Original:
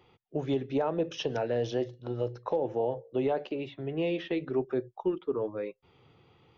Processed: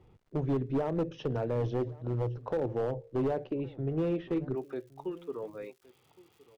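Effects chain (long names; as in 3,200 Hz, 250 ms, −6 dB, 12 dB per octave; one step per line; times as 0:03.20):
surface crackle 230 per second −52 dBFS
spectral tilt −4 dB per octave, from 0:04.54 +1.5 dB per octave
hard clipping −19.5 dBFS, distortion −14 dB
single-tap delay 1,116 ms −22 dB
level −5.5 dB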